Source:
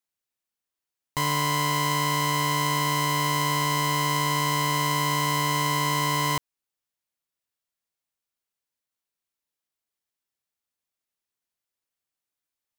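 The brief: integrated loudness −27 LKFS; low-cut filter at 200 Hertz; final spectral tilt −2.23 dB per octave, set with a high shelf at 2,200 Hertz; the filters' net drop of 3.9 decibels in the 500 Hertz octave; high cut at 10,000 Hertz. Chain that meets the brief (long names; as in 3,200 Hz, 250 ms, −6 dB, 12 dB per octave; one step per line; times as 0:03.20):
high-pass filter 200 Hz
low-pass filter 10,000 Hz
parametric band 500 Hz −5 dB
high-shelf EQ 2,200 Hz +8.5 dB
level −6 dB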